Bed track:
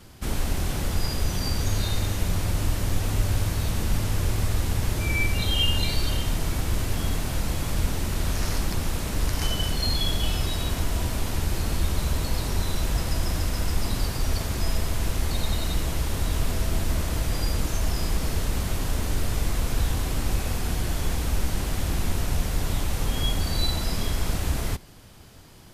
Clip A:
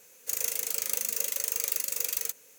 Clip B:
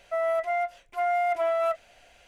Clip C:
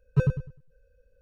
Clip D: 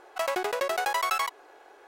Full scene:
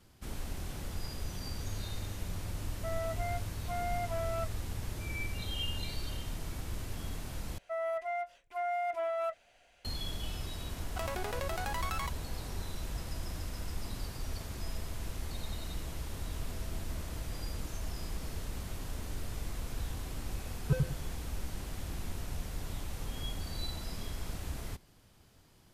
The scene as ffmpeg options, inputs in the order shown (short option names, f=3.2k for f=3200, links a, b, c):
-filter_complex "[2:a]asplit=2[a][b];[0:a]volume=-13.5dB[c];[4:a]acompressor=threshold=-30dB:ratio=6:attack=3.2:release=140:knee=1:detection=peak[d];[c]asplit=2[e][f];[e]atrim=end=7.584[g];[b]atrim=end=2.27,asetpts=PTS-STARTPTS,volume=-8.5dB[h];[f]atrim=start=9.846[i];[a]atrim=end=2.27,asetpts=PTS-STARTPTS,volume=-11.5dB,afade=t=in:d=0.004:c=hsin,afade=t=out:st=2.266:d=0.004:c=hsin,adelay=2720[j];[d]atrim=end=1.87,asetpts=PTS-STARTPTS,volume=-4dB,afade=t=in:d=0.004:c=hsin,afade=t=out:st=1.866:d=0.004:c=hsin,adelay=10800[k];[3:a]atrim=end=1.21,asetpts=PTS-STARTPTS,volume=-7dB,afade=t=in:d=0.004:c=hsin,afade=t=out:st=1.206:d=0.004:c=hsin,adelay=20530[l];[g][h]acrossfade=d=0.004:c1=hsin:c2=hsin[m];[m][i]acrossfade=d=0.004:c1=hsin:c2=hsin[n];[n][j][k][l]amix=inputs=4:normalize=0"